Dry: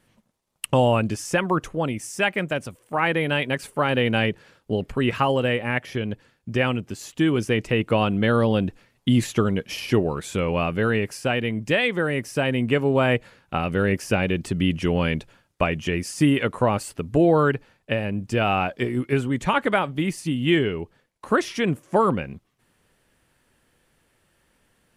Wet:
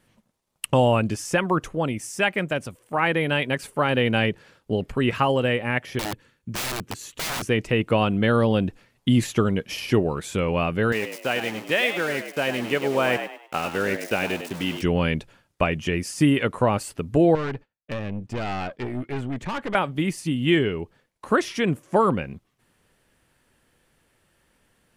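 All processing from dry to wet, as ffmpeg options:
-filter_complex "[0:a]asettb=1/sr,asplit=3[a][b][c];[a]atrim=end=5.994[d];[b]atrim=start=5.99:end=7.49,asetpts=PTS-STARTPTS,afade=t=in:d=0.004:c=qsin,afade=t=out:st=1.496:d=0.004:c=qsin,equalizer=f=720:t=o:w=0.31:g=-12,bandreject=f=5k:w=9.2,aeval=exprs='(mod(15*val(0)+1,2)-1)/15':c=same[e];[c]atrim=start=7.486[f];[d][e]acrossfade=d=0.004:c1=hsin:c2=qsin[g];[g][f]acrossfade=d=0.004:c1=qsin:c2=hsin,asettb=1/sr,asplit=3[h][i][j];[h]atrim=end=10.924[k];[i]atrim=start=10.92:end=14.82,asetpts=PTS-STARTPTS,afade=t=in:d=0.004:c=qsin,afade=t=out:st=3.896:d=0.004:c=qsin,aeval=exprs='val(0)*gte(abs(val(0)),0.0282)':c=same,highpass=f=420:p=1,asplit=5[l][m][n][o][p];[m]adelay=101,afreqshift=71,volume=-9dB[q];[n]adelay=202,afreqshift=142,volume=-18.4dB[r];[o]adelay=303,afreqshift=213,volume=-27.7dB[s];[p]adelay=404,afreqshift=284,volume=-37.1dB[t];[l][q][r][s][t]amix=inputs=5:normalize=0,atrim=end_sample=171990[u];[j]atrim=start=14.816[v];[k][u]acrossfade=d=0.004:c1=hsin:c2=qsin[w];[w][v]acrossfade=d=0.004:c1=qsin:c2=hsin,asettb=1/sr,asplit=3[x][y][z];[x]atrim=end=17.354[aa];[y]atrim=start=17.35:end=19.75,asetpts=PTS-STARTPTS,afade=t=in:d=0.004:c=qsin,afade=t=out:st=2.396:d=0.004:c=qsin,agate=range=-33dB:threshold=-42dB:ratio=3:release=100:detection=peak,aeval=exprs='(tanh(17.8*val(0)+0.5)-tanh(0.5))/17.8':c=same,highshelf=f=5.7k:g=-11.5[ab];[z]atrim=start=19.746[ac];[aa][ab]acrossfade=d=0.004:c1=hsin:c2=qsin[ad];[ad][ac]acrossfade=d=0.004:c1=qsin:c2=hsin"

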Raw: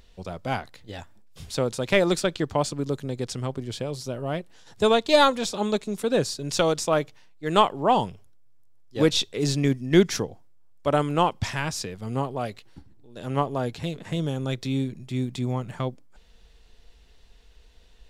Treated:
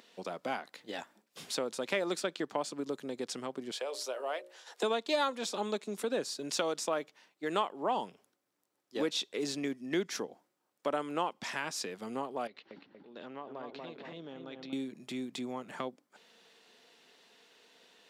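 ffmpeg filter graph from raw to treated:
-filter_complex "[0:a]asettb=1/sr,asplit=3[a][b][c];[a]atrim=end=3.714[d];[b]atrim=start=3.71:end=4.83,asetpts=PTS-STARTPTS,afade=t=in:d=0.004:c=qsin,afade=t=out:st=1.116:d=0.004:c=qsin,highpass=f=450:w=0.5412,highpass=f=450:w=1.3066,bandreject=f=60:t=h:w=6,bandreject=f=120:t=h:w=6,bandreject=f=180:t=h:w=6,bandreject=f=240:t=h:w=6,bandreject=f=300:t=h:w=6,bandreject=f=360:t=h:w=6,bandreject=f=420:t=h:w=6,bandreject=f=480:t=h:w=6,bandreject=f=540:t=h:w=6,bandreject=f=600:t=h:w=6[e];[c]atrim=start=4.826[f];[d][e]acrossfade=d=0.004:c1=hsin:c2=qsin[g];[g][f]acrossfade=d=0.004:c1=qsin:c2=hsin,asettb=1/sr,asplit=3[h][i][j];[h]atrim=end=12.474[k];[i]atrim=start=12.47:end=14.73,asetpts=PTS-STARTPTS,afade=t=in:d=0.004:c=qsin,afade=t=out:st=2.256:d=0.004:c=qsin,lowpass=f=4.6k:w=0.5412,lowpass=f=4.6k:w=1.3066,asplit=2[l][m];[m]adelay=237,lowpass=f=1.7k:p=1,volume=-5.5dB,asplit=2[n][o];[o]adelay=237,lowpass=f=1.7k:p=1,volume=0.35,asplit=2[p][q];[q]adelay=237,lowpass=f=1.7k:p=1,volume=0.35,asplit=2[r][s];[s]adelay=237,lowpass=f=1.7k:p=1,volume=0.35[t];[l][n][p][r][t]amix=inputs=5:normalize=0,atrim=end_sample=99666,acompressor=threshold=-42dB:ratio=4:attack=3.2:release=140:knee=1:detection=peak[u];[j]atrim=start=14.726[v];[k][u]acrossfade=d=0.004:c1=hsin:c2=qsin[w];[w][v]acrossfade=d=0.004:c1=qsin:c2=hsin,equalizer=f=1.5k:t=o:w=2.2:g=3,acompressor=threshold=-35dB:ratio=2.5,highpass=f=220:w=0.5412,highpass=f=220:w=1.3066"

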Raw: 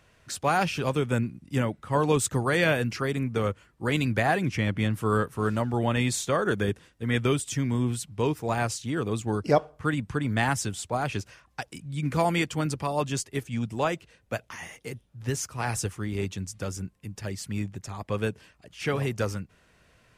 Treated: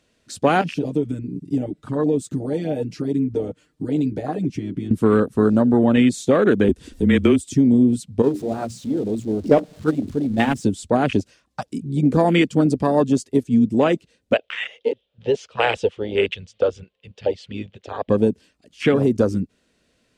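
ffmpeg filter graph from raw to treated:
-filter_complex "[0:a]asettb=1/sr,asplit=3[a][b][c];[a]atrim=end=0.614[d];[b]atrim=start=0.61:end=4.91,asetpts=PTS-STARTPTS,afade=t=in:d=0.004:c=qsin,afade=t=out:st=4.296:d=0.004:c=qsin,acompressor=threshold=-37dB:ratio=4:attack=3.2:release=140:knee=1:detection=peak,aecho=1:1:6.6:0.81,atrim=end_sample=189630[e];[c]atrim=start=4.906[f];[d][e]acrossfade=d=0.004:c1=hsin:c2=qsin[g];[g][f]acrossfade=d=0.004:c1=qsin:c2=hsin,asettb=1/sr,asplit=3[h][i][j];[h]atrim=end=6.694[k];[i]atrim=start=6.69:end=7.46,asetpts=PTS-STARTPTS,afade=t=in:d=0.004:c=qsin,afade=t=out:st=0.766:d=0.004:c=qsin,highshelf=f=9.1k:g=6.5,acompressor=mode=upward:threshold=-27dB:ratio=2.5:attack=3.2:release=140:knee=2.83:detection=peak,afreqshift=-27[l];[j]atrim=start=7.456[m];[k][l]acrossfade=d=0.004:c1=hsin:c2=qsin[n];[n][m]acrossfade=d=0.004:c1=qsin:c2=hsin,asettb=1/sr,asplit=3[o][p][q];[o]atrim=end=8.224[r];[p]atrim=start=8.22:end=10.64,asetpts=PTS-STARTPTS,afade=t=in:d=0.004:c=qsin,afade=t=out:st=2.416:d=0.004:c=qsin,aeval=exprs='val(0)+0.5*0.0562*sgn(val(0))':c=same,agate=range=-13dB:threshold=-21dB:ratio=16:release=100:detection=peak,bandreject=f=60:t=h:w=6,bandreject=f=120:t=h:w=6,bandreject=f=180:t=h:w=6,bandreject=f=240:t=h:w=6,bandreject=f=300:t=h:w=6[s];[q]atrim=start=10.636[t];[r][s]acrossfade=d=0.004:c1=hsin:c2=qsin[u];[u][t]acrossfade=d=0.004:c1=qsin:c2=hsin,asettb=1/sr,asplit=3[v][w][x];[v]atrim=end=14.334[y];[w]atrim=start=14.33:end=18.09,asetpts=PTS-STARTPTS,afade=t=in:d=0.004:c=qsin,afade=t=out:st=3.756:d=0.004:c=qsin,lowpass=f=3.1k:t=q:w=3.8,lowshelf=f=360:t=q:w=3:g=-10[z];[x]atrim=start=18.086[aa];[y][z]acrossfade=d=0.004:c1=hsin:c2=qsin[ab];[ab][aa]acrossfade=d=0.004:c1=qsin:c2=hsin,afwtdn=0.0251,equalizer=f=125:t=o:w=1:g=-4,equalizer=f=250:t=o:w=1:g=12,equalizer=f=500:t=o:w=1:g=5,equalizer=f=1k:t=o:w=1:g=-3,equalizer=f=4k:t=o:w=1:g=8,equalizer=f=8k:t=o:w=1:g=7,acompressor=threshold=-21dB:ratio=3,volume=8dB"

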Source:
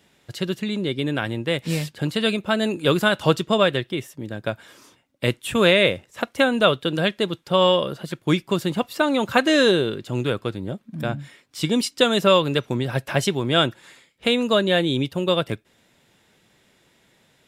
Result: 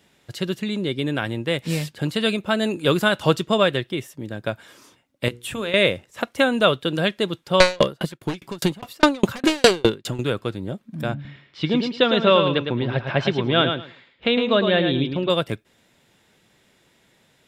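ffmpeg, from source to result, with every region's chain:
-filter_complex "[0:a]asettb=1/sr,asplit=3[a][b][c];[a]atrim=end=5.284[d];[b]atrim=start=5.28:end=5.74,asetpts=PTS-STARTPTS,afade=t=in:d=0.004:c=qsin,afade=t=out:st=0.456:d=0.004:c=qsin,acompressor=threshold=-27dB:ratio=3:attack=3.2:release=140:knee=1:detection=peak,bandreject=f=60:t=h:w=6,bandreject=f=120:t=h:w=6,bandreject=f=180:t=h:w=6,bandreject=f=240:t=h:w=6,bandreject=f=300:t=h:w=6,bandreject=f=360:t=h:w=6,bandreject=f=420:t=h:w=6,bandreject=f=480:t=h:w=6[e];[c]atrim=start=5.736[f];[d][e]acrossfade=d=0.004:c1=hsin:c2=qsin[g];[g][f]acrossfade=d=0.004:c1=qsin:c2=hsin,asettb=1/sr,asplit=3[h][i][j];[h]atrim=end=7.604[k];[i]atrim=start=7.6:end=10.19,asetpts=PTS-STARTPTS,afade=t=in:d=0.004:c=qsin,afade=t=out:st=2.586:d=0.004:c=qsin,aeval=exprs='0.668*sin(PI/2*3.55*val(0)/0.668)':c=same,aeval=exprs='val(0)*pow(10,-39*if(lt(mod(4.9*n/s,1),2*abs(4.9)/1000),1-mod(4.9*n/s,1)/(2*abs(4.9)/1000),(mod(4.9*n/s,1)-2*abs(4.9)/1000)/(1-2*abs(4.9)/1000))/20)':c=same[l];[j]atrim=start=10.186[m];[k][l]acrossfade=d=0.004:c1=hsin:c2=qsin[n];[n][m]acrossfade=d=0.004:c1=qsin:c2=hsin,asettb=1/sr,asplit=3[o][p][q];[o]atrim=end=11.144[r];[p]atrim=start=11.14:end=15.3,asetpts=PTS-STARTPTS,afade=t=in:d=0.004:c=qsin,afade=t=out:st=4.156:d=0.004:c=qsin,lowpass=f=4k:w=0.5412,lowpass=f=4k:w=1.3066,aecho=1:1:108|216|324:0.473|0.0852|0.0153,atrim=end_sample=183456[s];[q]atrim=start=15.296[t];[r][s]acrossfade=d=0.004:c1=hsin:c2=qsin[u];[u][t]acrossfade=d=0.004:c1=qsin:c2=hsin"

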